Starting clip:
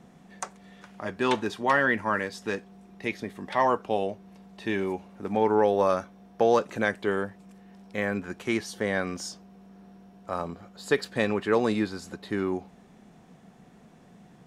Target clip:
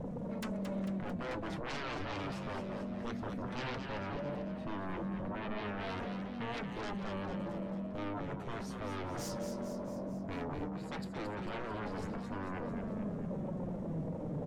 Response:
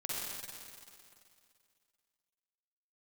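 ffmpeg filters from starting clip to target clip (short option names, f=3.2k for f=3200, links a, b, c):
-filter_complex "[0:a]firequalizer=gain_entry='entry(150,0);entry(360,-19);entry(2700,-29)':delay=0.05:min_phase=1,areverse,acompressor=threshold=-52dB:ratio=6,areverse,aeval=exprs='0.00668*sin(PI/2*5.62*val(0)/0.00668)':c=same,asplit=8[a][b][c][d][e][f][g][h];[b]adelay=223,afreqshift=43,volume=-7dB[i];[c]adelay=446,afreqshift=86,volume=-12dB[j];[d]adelay=669,afreqshift=129,volume=-17.1dB[k];[e]adelay=892,afreqshift=172,volume=-22.1dB[l];[f]adelay=1115,afreqshift=215,volume=-27.1dB[m];[g]adelay=1338,afreqshift=258,volume=-32.2dB[n];[h]adelay=1561,afreqshift=301,volume=-37.2dB[o];[a][i][j][k][l][m][n][o]amix=inputs=8:normalize=0,flanger=delay=3.9:depth=4.7:regen=61:speed=0.16:shape=triangular,volume=10.5dB"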